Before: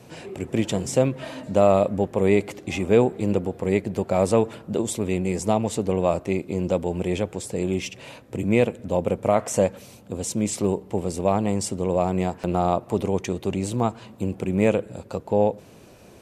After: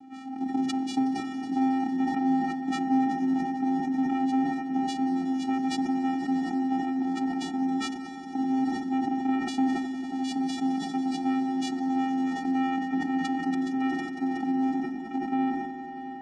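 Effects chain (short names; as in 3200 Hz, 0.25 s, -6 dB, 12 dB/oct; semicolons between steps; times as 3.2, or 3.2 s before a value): bin magnitudes rounded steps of 30 dB; vocoder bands 4, square 264 Hz; compressor 3:1, threshold -26 dBFS, peak gain reduction 9.5 dB; notches 50/100/150/200/250 Hz; on a send: swelling echo 92 ms, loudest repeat 5, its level -14 dB; on the sum: sustainer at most 42 dB/s; gain +1 dB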